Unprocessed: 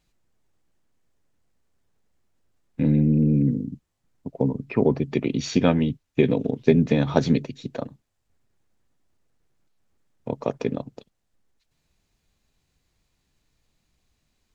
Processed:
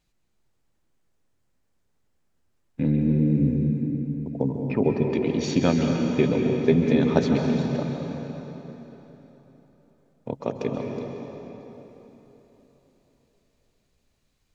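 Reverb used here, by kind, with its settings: plate-style reverb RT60 3.9 s, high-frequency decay 0.8×, pre-delay 120 ms, DRR 1.5 dB; trim -2.5 dB

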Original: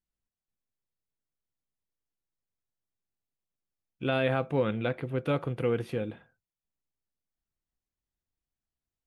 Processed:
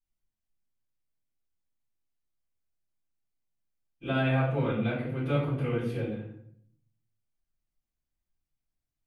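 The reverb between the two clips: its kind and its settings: simulated room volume 110 m³, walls mixed, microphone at 3.8 m; trim -14 dB

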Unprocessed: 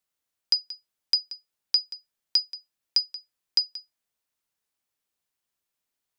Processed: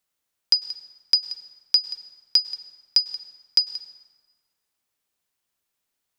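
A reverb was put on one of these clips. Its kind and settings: plate-style reverb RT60 1.6 s, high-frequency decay 0.65×, pre-delay 90 ms, DRR 14 dB; trim +4 dB

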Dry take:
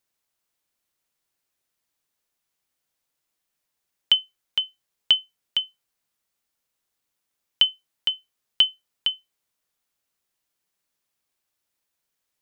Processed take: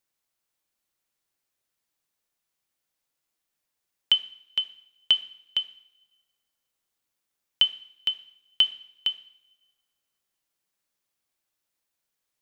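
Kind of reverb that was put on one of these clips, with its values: two-slope reverb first 0.63 s, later 1.6 s, from -18 dB, DRR 11 dB; trim -2.5 dB

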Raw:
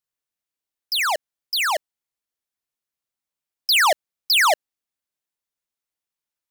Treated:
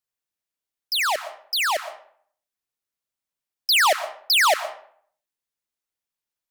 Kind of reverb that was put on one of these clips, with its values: algorithmic reverb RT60 0.57 s, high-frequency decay 0.7×, pre-delay 75 ms, DRR 12.5 dB; trim -1 dB

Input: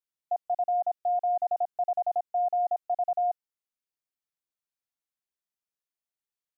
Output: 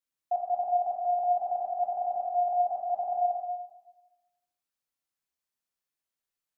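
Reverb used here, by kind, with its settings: plate-style reverb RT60 1.1 s, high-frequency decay 0.95×, DRR -2 dB; trim -1 dB

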